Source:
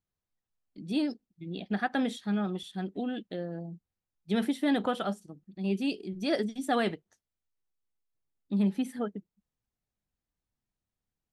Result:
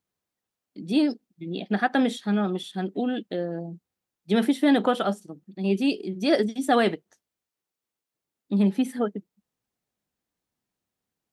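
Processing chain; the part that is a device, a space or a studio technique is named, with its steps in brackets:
filter by subtraction (in parallel: low-pass filter 320 Hz 12 dB per octave + polarity inversion)
on the sum: level +6 dB

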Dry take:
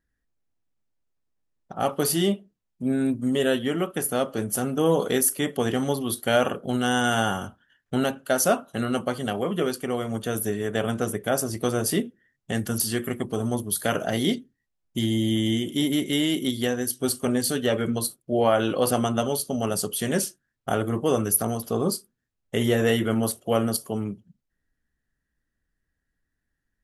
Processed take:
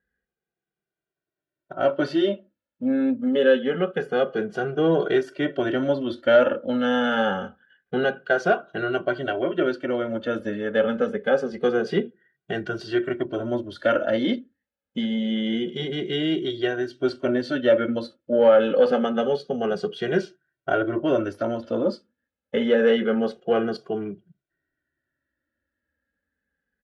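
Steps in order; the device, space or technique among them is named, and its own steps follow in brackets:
barber-pole flanger into a guitar amplifier (barber-pole flanger 2 ms −0.26 Hz; soft clipping −14 dBFS, distortion −24 dB; loudspeaker in its box 78–3,900 Hz, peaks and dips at 110 Hz −9 dB, 360 Hz +6 dB, 550 Hz +9 dB, 1,100 Hz −5 dB, 1,500 Hz +10 dB)
level +2 dB

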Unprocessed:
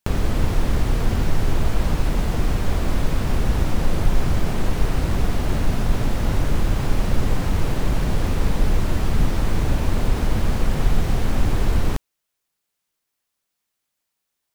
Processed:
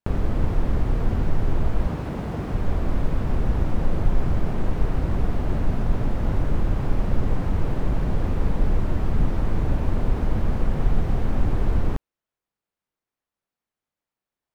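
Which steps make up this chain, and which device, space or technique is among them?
through cloth (high-shelf EQ 2,600 Hz −16 dB)
0:01.88–0:02.54: high-pass filter 85 Hz 12 dB per octave
level −2 dB

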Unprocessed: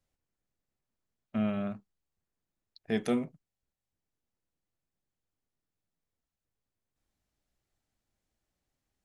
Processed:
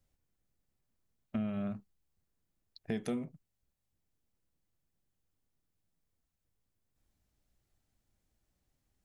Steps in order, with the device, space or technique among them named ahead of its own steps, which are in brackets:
ASMR close-microphone chain (low-shelf EQ 240 Hz +7.5 dB; downward compressor 5 to 1, threshold −33 dBFS, peak gain reduction 11 dB; high-shelf EQ 7,900 Hz +4.5 dB)

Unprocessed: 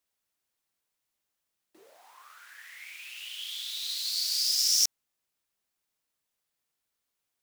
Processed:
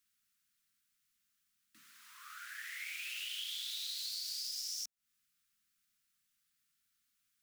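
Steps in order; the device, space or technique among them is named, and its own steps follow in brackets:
elliptic band-stop filter 240–1,300 Hz, stop band 40 dB
parametric band 71 Hz −5.5 dB 0.9 octaves
serial compression, leveller first (downward compressor 3 to 1, threshold −30 dBFS, peak gain reduction 8 dB; downward compressor 8 to 1, threshold −42 dBFS, peak gain reduction 14.5 dB)
level +3.5 dB

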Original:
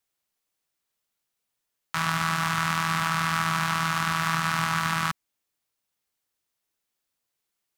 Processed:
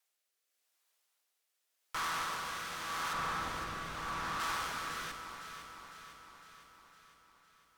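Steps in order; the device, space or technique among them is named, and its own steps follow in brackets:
Butterworth high-pass 200 Hz 72 dB per octave
high-pass filter 570 Hz 12 dB per octave
overdriven rotary cabinet (tube saturation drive 39 dB, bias 0.3; rotating-speaker cabinet horn 0.85 Hz)
0:03.13–0:04.40: spectral tilt −2.5 dB per octave
delay that swaps between a low-pass and a high-pass 253 ms, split 1,200 Hz, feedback 76%, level −6.5 dB
level +5.5 dB

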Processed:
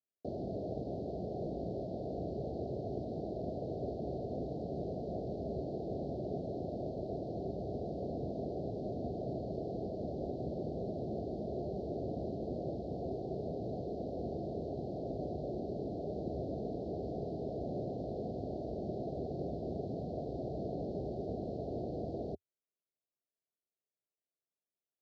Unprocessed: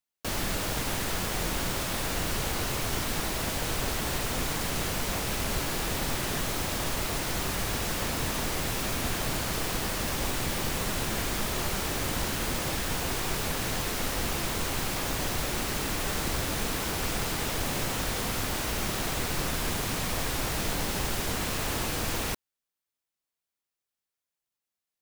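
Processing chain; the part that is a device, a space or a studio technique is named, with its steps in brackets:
Chebyshev band-stop filter 640–4,300 Hz, order 4
bass cabinet (loudspeaker in its box 68–2,400 Hz, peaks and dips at 90 Hz −5 dB, 400 Hz +6 dB, 730 Hz +10 dB, 1,500 Hz −7 dB)
high-shelf EQ 11,000 Hz −4.5 dB
level −5 dB

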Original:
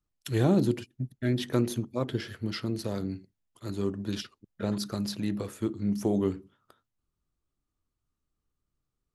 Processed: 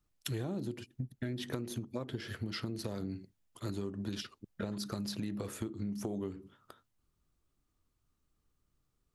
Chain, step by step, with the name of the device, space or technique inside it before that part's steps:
serial compression, peaks first (downward compressor, threshold −33 dBFS, peak gain reduction 13.5 dB; downward compressor 2 to 1, threshold −43 dBFS, peak gain reduction 7.5 dB)
level +4.5 dB

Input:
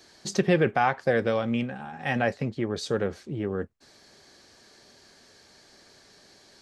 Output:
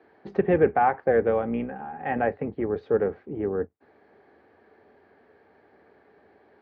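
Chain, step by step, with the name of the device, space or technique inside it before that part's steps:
sub-octave bass pedal (sub-octave generator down 2 octaves, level −4 dB; loudspeaker in its box 87–2,100 Hz, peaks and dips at 130 Hz −8 dB, 290 Hz +4 dB, 440 Hz +9 dB, 790 Hz +7 dB)
level −2.5 dB

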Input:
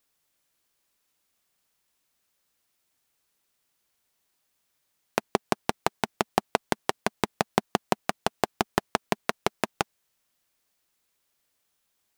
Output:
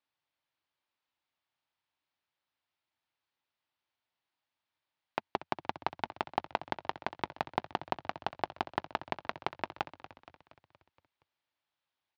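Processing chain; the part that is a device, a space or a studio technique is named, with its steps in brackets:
frequency-shifting delay pedal into a guitar cabinet (echo with shifted repeats 235 ms, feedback 57%, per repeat −57 Hz, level −14 dB; loudspeaker in its box 83–4,200 Hz, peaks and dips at 88 Hz +3 dB, 200 Hz −10 dB, 440 Hz −7 dB, 890 Hz +5 dB)
level −8.5 dB

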